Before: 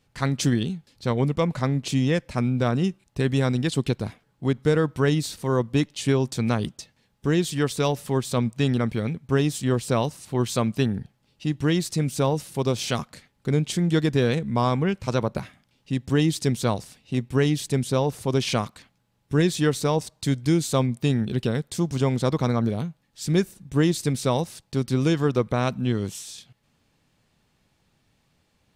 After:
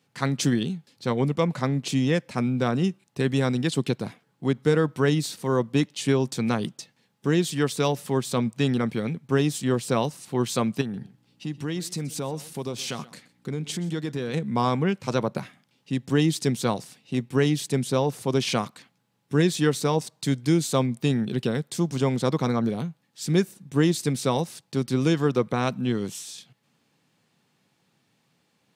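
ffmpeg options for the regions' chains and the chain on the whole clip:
-filter_complex "[0:a]asettb=1/sr,asplit=3[a][b][c];[a]atrim=end=10.814[d];[b]atrim=start=10.81:end=14.34,asetpts=PTS-STARTPTS,afade=t=in:d=0.004:c=qsin,afade=t=out:st=3.526:d=0.004:c=qsin,acompressor=threshold=-28dB:ratio=2.5:attack=3.2:release=140:knee=1:detection=peak,aeval=exprs='val(0)+0.00126*(sin(2*PI*60*n/s)+sin(2*PI*2*60*n/s)/2+sin(2*PI*3*60*n/s)/3+sin(2*PI*4*60*n/s)/4+sin(2*PI*5*60*n/s)/5)':c=same,aecho=1:1:126:0.112,atrim=end_sample=155673[e];[c]atrim=start=14.336[f];[d][e]acrossfade=d=0.004:c1=hsin:c2=qsin[g];[g][f]acrossfade=d=0.004:c1=qsin:c2=hsin,highpass=f=130:w=0.5412,highpass=f=130:w=1.3066,bandreject=f=610:w=17"

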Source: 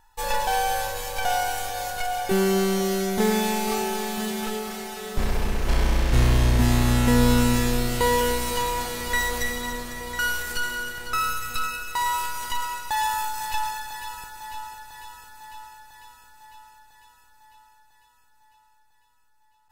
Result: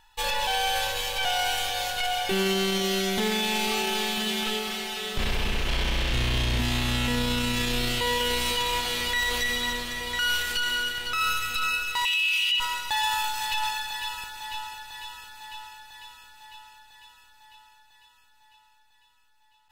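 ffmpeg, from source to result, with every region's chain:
-filter_complex "[0:a]asettb=1/sr,asplit=3[a][b][c];[a]atrim=end=12.054[d];[b]atrim=start=12.05:end=12.6,asetpts=PTS-STARTPTS,afade=t=in:d=0.004:c=qsin,afade=t=out:st=0.546:d=0.004:c=qsin,aeval=exprs='val(0)+0.5*0.0211*sgn(val(0))':c=same,highpass=f=2.7k:t=q:w=13[e];[c]atrim=start=12.596[f];[d][e]acrossfade=d=0.004:c1=hsin:c2=qsin[g];[g][f]acrossfade=d=0.004:c1=qsin:c2=hsin,equalizer=f=3.1k:w=1.1:g=14,alimiter=limit=-15dB:level=0:latency=1:release=17,volume=-2.5dB"

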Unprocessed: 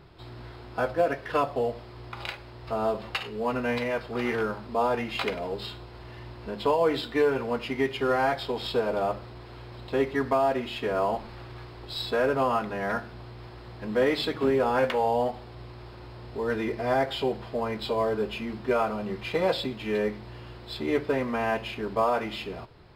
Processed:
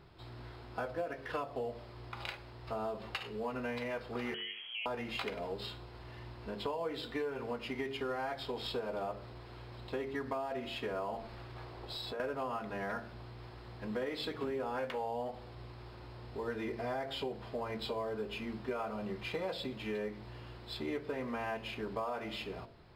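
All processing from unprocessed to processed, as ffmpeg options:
-filter_complex "[0:a]asettb=1/sr,asplit=3[a][b][c];[a]atrim=end=4.344[d];[b]atrim=start=4.34:end=4.86,asetpts=PTS-STARTPTS,afade=t=in:d=0.004:c=qsin,afade=t=out:st=0.516:d=0.004:c=qsin,acompressor=threshold=-36dB:ratio=2.5:attack=3.2:release=140:knee=1:detection=peak,lowpass=f=2.9k:t=q:w=0.5098,lowpass=f=2.9k:t=q:w=0.6013,lowpass=f=2.9k:t=q:w=0.9,lowpass=f=2.9k:t=q:w=2.563,afreqshift=-3400[e];[c]atrim=start=4.856[f];[d][e]acrossfade=d=0.004:c1=hsin:c2=qsin[g];[g][f]acrossfade=d=0.004:c1=qsin:c2=hsin,asettb=1/sr,asplit=3[h][i][j];[h]atrim=end=11.564[k];[i]atrim=start=11.56:end=12.2,asetpts=PTS-STARTPTS,afade=t=in:d=0.004:c=qsin,afade=t=out:st=0.636:d=0.004:c=qsin,equalizer=f=640:w=0.89:g=5.5,acompressor=threshold=-32dB:ratio=6:attack=3.2:release=140:knee=1:detection=peak[l];[j]atrim=start=12.196[m];[k][l]acrossfade=d=0.004:c1=hsin:c2=qsin[n];[n][m]acrossfade=d=0.004:c1=qsin:c2=hsin,bandreject=f=45.38:t=h:w=4,bandreject=f=90.76:t=h:w=4,bandreject=f=136.14:t=h:w=4,bandreject=f=181.52:t=h:w=4,bandreject=f=226.9:t=h:w=4,bandreject=f=272.28:t=h:w=4,bandreject=f=317.66:t=h:w=4,bandreject=f=363.04:t=h:w=4,bandreject=f=408.42:t=h:w=4,bandreject=f=453.8:t=h:w=4,bandreject=f=499.18:t=h:w=4,bandreject=f=544.56:t=h:w=4,bandreject=f=589.94:t=h:w=4,bandreject=f=635.32:t=h:w=4,bandreject=f=680.7:t=h:w=4,acompressor=threshold=-29dB:ratio=5,volume=-5.5dB"

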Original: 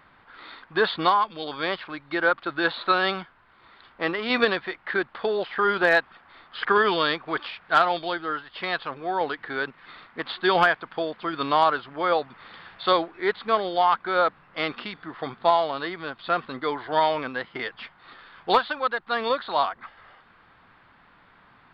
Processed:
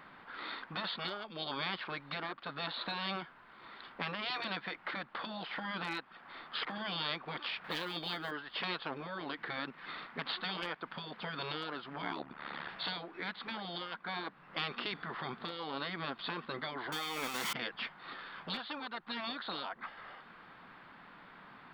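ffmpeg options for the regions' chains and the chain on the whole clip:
-filter_complex "[0:a]asettb=1/sr,asplit=3[a][b][c];[a]atrim=end=7.644[d];[b]atrim=start=7.64:end=8.31,asetpts=PTS-STARTPTS,afade=t=in:d=0.004:c=qsin,afade=t=out:st=0.666:d=0.004:c=qsin,highshelf=f=3.9k:g=3,acontrast=23,acrusher=bits=9:mode=log:mix=0:aa=0.000001[e];[c]atrim=start=8.306[f];[d][e]acrossfade=d=0.004:c1=hsin:c2=qsin[g];[g][f]acrossfade=d=0.004:c1=qsin:c2=hsin,asettb=1/sr,asplit=3[h][i][j];[h]atrim=end=12.024[k];[i]atrim=start=12.02:end=12.69,asetpts=PTS-STARTPTS,afade=t=in:d=0.004:c=qsin,afade=t=out:st=0.666:d=0.004:c=qsin,highshelf=f=3.8k:g=-10,acontrast=76,tremolo=f=72:d=0.974[l];[j]atrim=start=12.686[m];[k][l]acrossfade=d=0.004:c1=hsin:c2=qsin[n];[n][m]acrossfade=d=0.004:c1=qsin:c2=hsin,asettb=1/sr,asplit=3[o][p][q];[o]atrim=end=16.924[r];[p]atrim=start=16.92:end=17.53,asetpts=PTS-STARTPTS,afade=t=in:d=0.004:c=qsin,afade=t=out:st=0.606:d=0.004:c=qsin,aeval=exprs='val(0)+0.5*0.0398*sgn(val(0))':c=same,lowshelf=f=490:g=-9.5,aecho=1:1:0.9:0.34,atrim=end_sample=26901[s];[q]atrim=start=17.526[t];[r][s]acrossfade=d=0.004:c1=hsin:c2=qsin[u];[u][t]acrossfade=d=0.004:c1=qsin:c2=hsin,acompressor=threshold=-33dB:ratio=2.5,afftfilt=real='re*lt(hypot(re,im),0.0708)':imag='im*lt(hypot(re,im),0.0708)':win_size=1024:overlap=0.75,lowshelf=f=130:t=q:w=1.5:g=-7.5,volume=1dB"

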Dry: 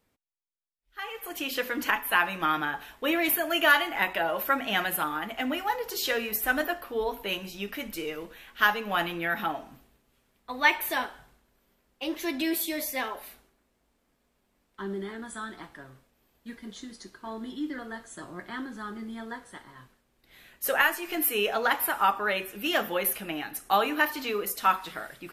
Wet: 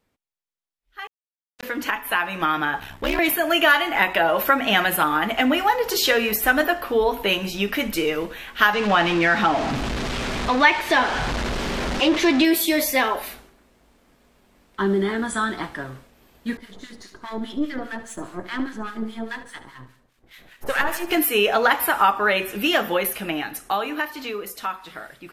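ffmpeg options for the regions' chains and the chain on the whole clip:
-filter_complex "[0:a]asettb=1/sr,asplit=3[a][b][c];[a]atrim=end=1.074[d];[b]atrim=start=1.07:end=1.63,asetpts=PTS-STARTPTS,afade=t=in:d=0.004:c=qsin,afade=t=out:st=0.556:d=0.004:c=qsin,acrossover=split=3300[e][f];[f]acompressor=threshold=-43dB:ratio=4:attack=1:release=60[g];[e][g]amix=inputs=2:normalize=0,acrusher=bits=2:mix=0:aa=0.5[h];[c]atrim=start=1.626[i];[d][h]acrossfade=d=0.004:c1=hsin:c2=qsin[j];[j][i]acrossfade=d=0.004:c1=qsin:c2=hsin,asettb=1/sr,asplit=3[k][l][m];[k]atrim=end=2.794[n];[l]atrim=start=2.79:end=3.19,asetpts=PTS-STARTPTS,afade=t=in:d=0.004:c=qsin,afade=t=out:st=0.396:d=0.004:c=qsin,aeval=exprs='val(0)+0.00251*(sin(2*PI*60*n/s)+sin(2*PI*2*60*n/s)/2+sin(2*PI*3*60*n/s)/3+sin(2*PI*4*60*n/s)/4+sin(2*PI*5*60*n/s)/5)':c=same,aeval=exprs='clip(val(0),-1,0.0168)':c=same,aeval=exprs='val(0)*sin(2*PI*35*n/s)':c=same[o];[m]atrim=start=3.186[p];[n][o]acrossfade=d=0.004:c1=hsin:c2=qsin[q];[q][p]acrossfade=d=0.004:c1=qsin:c2=hsin,asettb=1/sr,asplit=3[r][s][t];[r]atrim=end=8.734[u];[s]atrim=start=8.73:end=12.45,asetpts=PTS-STARTPTS,afade=t=in:d=0.004:c=qsin,afade=t=out:st=3.716:d=0.004:c=qsin,aeval=exprs='val(0)+0.5*0.0251*sgn(val(0))':c=same,lowpass=5.5k[v];[t]atrim=start=12.446[w];[u][v]acrossfade=d=0.004:c1=hsin:c2=qsin[x];[x][w]acrossfade=d=0.004:c1=qsin:c2=hsin,asettb=1/sr,asplit=3[y][z][aa];[y]atrim=end=16.574[ab];[z]atrim=start=16.57:end=21.11,asetpts=PTS-STARTPTS,afade=t=in:d=0.004:c=qsin,afade=t=out:st=4.536:d=0.004:c=qsin,aeval=exprs='if(lt(val(0),0),0.447*val(0),val(0))':c=same,acrossover=split=1100[ac][ad];[ac]aeval=exprs='val(0)*(1-1/2+1/2*cos(2*PI*4.9*n/s))':c=same[ae];[ad]aeval=exprs='val(0)*(1-1/2-1/2*cos(2*PI*4.9*n/s))':c=same[af];[ae][af]amix=inputs=2:normalize=0,aecho=1:1:73|146|219|292:0.224|0.0985|0.0433|0.0191,atrim=end_sample=200214[ag];[aa]atrim=start=21.106[ah];[ab][ag]acrossfade=d=0.004:c1=hsin:c2=qsin[ai];[ai][ah]acrossfade=d=0.004:c1=qsin:c2=hsin,acompressor=threshold=-31dB:ratio=2,highshelf=f=8.5k:g=-6.5,dynaudnorm=f=140:g=31:m=13dB,volume=1.5dB"

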